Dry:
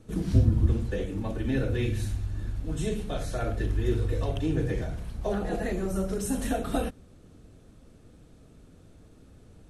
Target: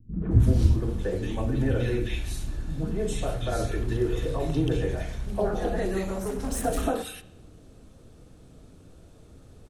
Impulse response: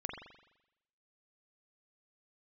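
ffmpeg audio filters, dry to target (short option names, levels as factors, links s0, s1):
-filter_complex "[0:a]bandreject=f=50:t=h:w=6,bandreject=f=100:t=h:w=6,bandreject=f=150:t=h:w=6,bandreject=f=200:t=h:w=6,asettb=1/sr,asplit=3[s0][s1][s2];[s0]atrim=end=5.894[s3];[s1]atrim=start=5.89:end=6.52,asetpts=PTS-STARTPTS,afade=t=in:d=0.004:c=qsin,afade=t=out:st=0.626:d=0.004:c=qsin,asoftclip=type=hard:threshold=0.0316[s4];[s2]atrim=start=6.516[s5];[s3][s4]acrossfade=d=0.004:c1=hsin:c2=qsin[s6];[s6][s5]acrossfade=d=0.004:c1=qsin:c2=hsin,acrossover=split=230|1900[s7][s8][s9];[s8]adelay=130[s10];[s9]adelay=310[s11];[s7][s10][s11]amix=inputs=3:normalize=0,asplit=2[s12][s13];[1:a]atrim=start_sample=2205,asetrate=48510,aresample=44100[s14];[s13][s14]afir=irnorm=-1:irlink=0,volume=0.335[s15];[s12][s15]amix=inputs=2:normalize=0,volume=1.26"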